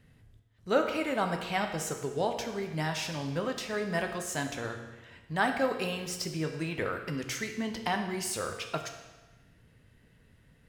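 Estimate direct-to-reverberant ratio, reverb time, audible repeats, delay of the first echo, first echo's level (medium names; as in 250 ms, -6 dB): 4.0 dB, 1.2 s, no echo, no echo, no echo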